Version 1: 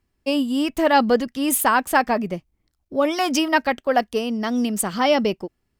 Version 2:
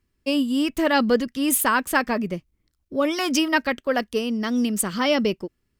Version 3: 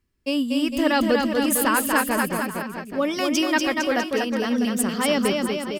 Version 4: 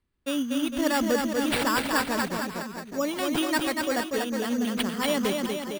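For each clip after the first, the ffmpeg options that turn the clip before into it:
ffmpeg -i in.wav -af "equalizer=frequency=760:width=2.4:gain=-9" out.wav
ffmpeg -i in.wav -af "aecho=1:1:240|456|650.4|825.4|982.8:0.631|0.398|0.251|0.158|0.1,volume=-1.5dB" out.wav
ffmpeg -i in.wav -af "acrusher=samples=7:mix=1:aa=0.000001,volume=-4.5dB" out.wav

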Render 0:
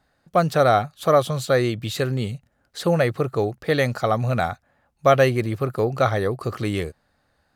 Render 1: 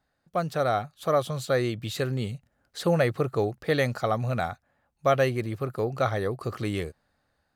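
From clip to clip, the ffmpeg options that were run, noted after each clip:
ffmpeg -i in.wav -af "dynaudnorm=framelen=470:gausssize=5:maxgain=11.5dB,volume=-9dB" out.wav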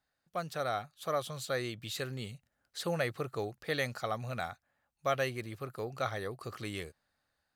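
ffmpeg -i in.wav -af "tiltshelf=frequency=1100:gain=-4.5,volume=-7.5dB" out.wav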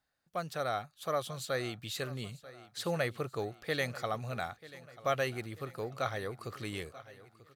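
ffmpeg -i in.wav -af "aecho=1:1:939|1878|2817|3756:0.126|0.0655|0.034|0.0177" out.wav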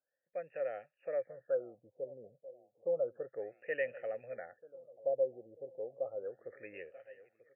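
ffmpeg -i in.wav -filter_complex "[0:a]asplit=3[link_01][link_02][link_03];[link_01]bandpass=frequency=530:width_type=q:width=8,volume=0dB[link_04];[link_02]bandpass=frequency=1840:width_type=q:width=8,volume=-6dB[link_05];[link_03]bandpass=frequency=2480:width_type=q:width=8,volume=-9dB[link_06];[link_04][link_05][link_06]amix=inputs=3:normalize=0,afftfilt=real='re*lt(b*sr/1024,840*pow(3100/840,0.5+0.5*sin(2*PI*0.32*pts/sr)))':imag='im*lt(b*sr/1024,840*pow(3100/840,0.5+0.5*sin(2*PI*0.32*pts/sr)))':win_size=1024:overlap=0.75,volume=4.5dB" out.wav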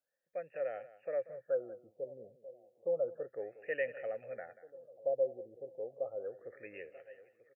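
ffmpeg -i in.wav -af "aecho=1:1:186:0.15" out.wav

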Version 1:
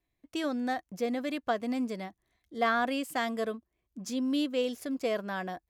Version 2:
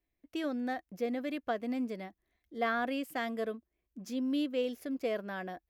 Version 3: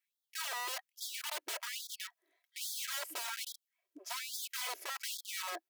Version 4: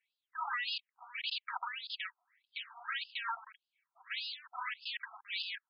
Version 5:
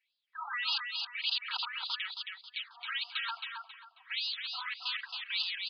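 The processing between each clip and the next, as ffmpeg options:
ffmpeg -i in.wav -af "equalizer=frequency=125:width_type=o:width=1:gain=-8,equalizer=frequency=1000:width_type=o:width=1:gain=-6,equalizer=frequency=4000:width_type=o:width=1:gain=-4,equalizer=frequency=8000:width_type=o:width=1:gain=-10,volume=-1dB" out.wav
ffmpeg -i in.wav -af "aeval=exprs='(mod(70.8*val(0)+1,2)-1)/70.8':channel_layout=same,aecho=1:1:3.1:0.48,afftfilt=real='re*gte(b*sr/1024,290*pow(3300/290,0.5+0.5*sin(2*PI*1.2*pts/sr)))':imag='im*gte(b*sr/1024,290*pow(3300/290,0.5+0.5*sin(2*PI*1.2*pts/sr)))':win_size=1024:overlap=0.75,volume=2.5dB" out.wav
ffmpeg -i in.wav -af "aeval=exprs='if(lt(val(0),0),0.447*val(0),val(0))':channel_layout=same,highpass=frequency=590:width_type=q:width=4.9,afftfilt=real='re*between(b*sr/1024,970*pow(3700/970,0.5+0.5*sin(2*PI*1.7*pts/sr))/1.41,970*pow(3700/970,0.5+0.5*sin(2*PI*1.7*pts/sr))*1.41)':imag='im*between(b*sr/1024,970*pow(3700/970,0.5+0.5*sin(2*PI*1.7*pts/sr))/1.41,970*pow(3700/970,0.5+0.5*sin(2*PI*1.7*pts/sr))*1.41)':win_size=1024:overlap=0.75,volume=9.5dB" out.wav
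ffmpeg -i in.wav -filter_complex "[0:a]crystalizer=i=8.5:c=0,asplit=2[link_01][link_02];[link_02]aecho=0:1:270|540|810|1080:0.596|0.167|0.0467|0.0131[link_03];[link_01][link_03]amix=inputs=2:normalize=0,aresample=11025,aresample=44100,volume=-7.5dB" out.wav

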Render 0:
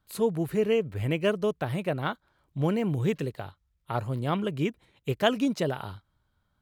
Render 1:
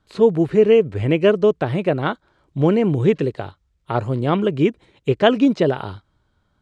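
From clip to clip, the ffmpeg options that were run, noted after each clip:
ffmpeg -i in.wav -filter_complex "[0:a]acrossover=split=4600[link_01][link_02];[link_02]acompressor=threshold=-59dB:ratio=4:attack=1:release=60[link_03];[link_01][link_03]amix=inputs=2:normalize=0,lowpass=frequency=8400:width=0.5412,lowpass=frequency=8400:width=1.3066,equalizer=frequency=370:width=1.2:gain=6,volume=7dB" out.wav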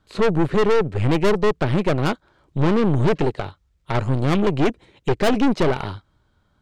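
ffmpeg -i in.wav -af "aeval=exprs='(tanh(12.6*val(0)+0.8)-tanh(0.8))/12.6':channel_layout=same,volume=7dB" out.wav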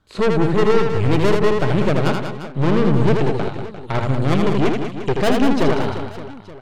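ffmpeg -i in.wav -af "aecho=1:1:80|192|348.8|568.3|875.6:0.631|0.398|0.251|0.158|0.1" out.wav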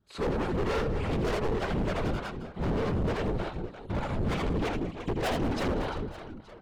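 ffmpeg -i in.wav -filter_complex "[0:a]afftfilt=real='hypot(re,im)*cos(2*PI*random(0))':imag='hypot(re,im)*sin(2*PI*random(1))':win_size=512:overlap=0.75,acrossover=split=520[link_01][link_02];[link_01]aeval=exprs='val(0)*(1-0.7/2+0.7/2*cos(2*PI*3.3*n/s))':channel_layout=same[link_03];[link_02]aeval=exprs='val(0)*(1-0.7/2-0.7/2*cos(2*PI*3.3*n/s))':channel_layout=same[link_04];[link_03][link_04]amix=inputs=2:normalize=0,asoftclip=type=hard:threshold=-25.5dB" out.wav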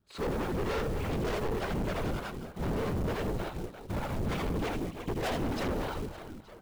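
ffmpeg -i in.wav -af "acrusher=bits=4:mode=log:mix=0:aa=0.000001,volume=-2dB" out.wav

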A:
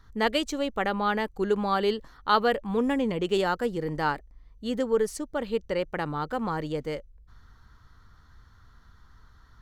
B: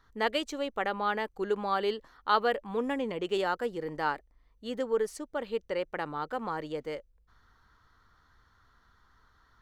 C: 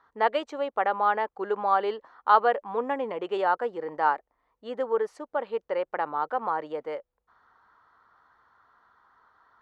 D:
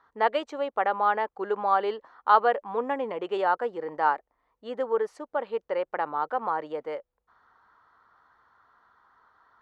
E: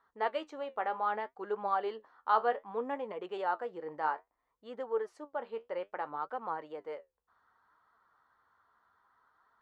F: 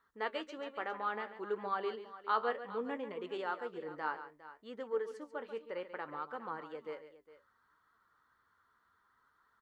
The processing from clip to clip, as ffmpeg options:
ffmpeg -i in.wav -af "bass=frequency=250:gain=-10,treble=frequency=4000:gain=-4,volume=-3dB" out.wav
ffmpeg -i in.wav -af "bandpass=frequency=860:width_type=q:width=1.3:csg=0,volume=8.5dB" out.wav
ffmpeg -i in.wav -af anull out.wav
ffmpeg -i in.wav -af "flanger=delay=4.2:depth=9.6:regen=62:speed=0.63:shape=triangular,volume=-4.5dB" out.wav
ffmpeg -i in.wav -af "equalizer=frequency=750:width_type=o:width=1.1:gain=-11,aecho=1:1:139|408:0.251|0.168,volume=1.5dB" out.wav

